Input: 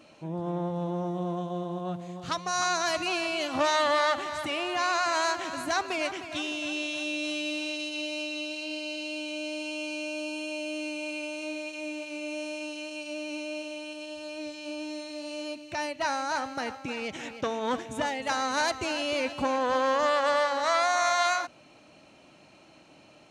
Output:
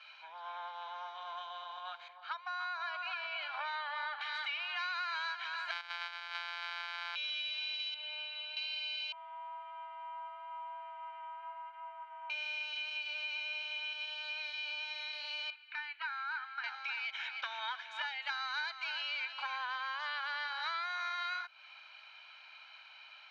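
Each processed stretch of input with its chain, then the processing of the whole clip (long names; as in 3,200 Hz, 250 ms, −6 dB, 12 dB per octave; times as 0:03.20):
0:02.08–0:04.21: resonant band-pass 510 Hz, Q 0.61 + single-tap delay 288 ms −10 dB
0:05.71–0:07.16: samples sorted by size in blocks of 256 samples + high-pass filter 52 Hz 24 dB per octave + low-shelf EQ 410 Hz +9 dB
0:07.94–0:08.57: head-to-tape spacing loss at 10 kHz 32 dB + notch filter 2,300 Hz, Q 9.6
0:09.12–0:12.30: low-pass filter 1,200 Hz 24 dB per octave + ring modulation 360 Hz
0:15.50–0:16.64: high-pass filter 1,100 Hz 24 dB per octave + head-to-tape spacing loss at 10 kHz 35 dB
whole clip: elliptic band-pass filter 1,100–4,200 Hz, stop band 80 dB; comb filter 1.3 ms, depth 70%; downward compressor 6 to 1, threshold −41 dBFS; level +4.5 dB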